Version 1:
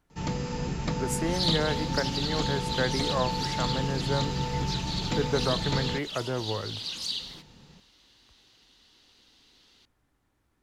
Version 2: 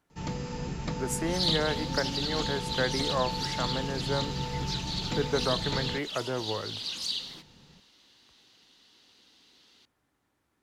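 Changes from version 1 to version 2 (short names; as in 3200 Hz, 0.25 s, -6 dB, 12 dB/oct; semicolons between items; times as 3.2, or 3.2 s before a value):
speech: add HPF 180 Hz 6 dB/oct; first sound -3.5 dB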